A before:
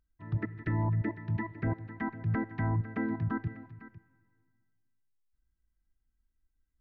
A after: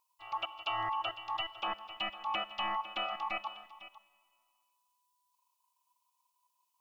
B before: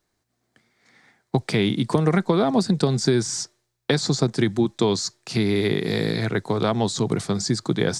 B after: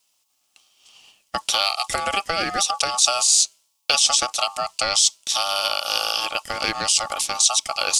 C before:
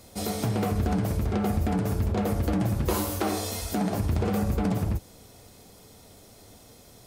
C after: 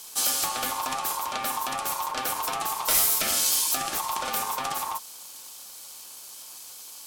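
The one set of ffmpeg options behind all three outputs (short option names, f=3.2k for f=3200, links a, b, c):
-af "aeval=exprs='val(0)*sin(2*PI*990*n/s)':c=same,aexciter=amount=7.8:drive=2.4:freq=2.4k,volume=-3dB"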